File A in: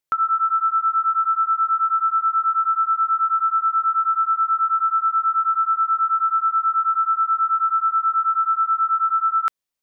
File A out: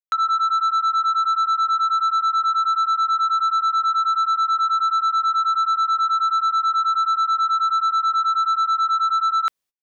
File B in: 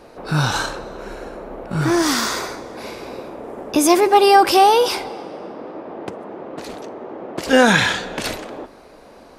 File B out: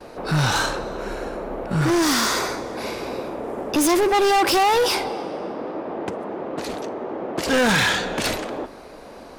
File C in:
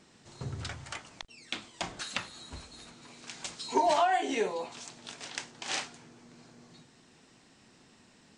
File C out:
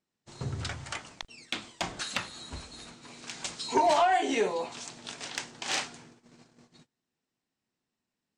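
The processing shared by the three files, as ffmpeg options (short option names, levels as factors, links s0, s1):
-af "asoftclip=type=tanh:threshold=0.112,agate=range=0.0316:threshold=0.00224:ratio=16:detection=peak,volume=1.5"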